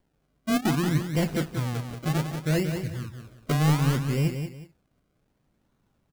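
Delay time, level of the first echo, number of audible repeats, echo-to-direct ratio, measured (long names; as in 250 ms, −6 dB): 182 ms, −7.5 dB, 2, −7.0 dB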